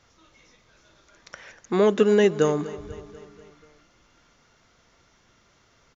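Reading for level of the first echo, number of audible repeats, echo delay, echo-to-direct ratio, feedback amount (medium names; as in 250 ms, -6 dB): -17.0 dB, 4, 244 ms, -15.0 dB, 58%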